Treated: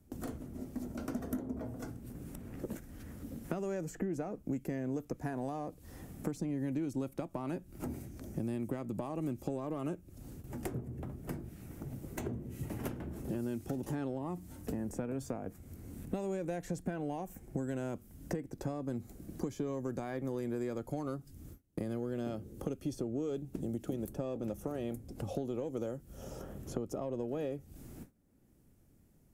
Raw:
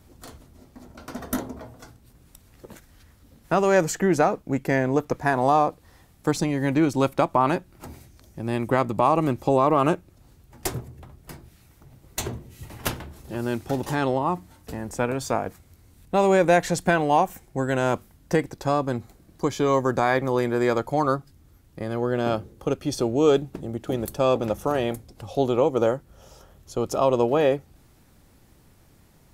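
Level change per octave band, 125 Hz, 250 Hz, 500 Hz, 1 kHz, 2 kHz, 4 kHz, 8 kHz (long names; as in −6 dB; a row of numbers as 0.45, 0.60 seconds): −10.5, −10.5, −16.5, −22.5, −22.0, −20.5, −16.0 decibels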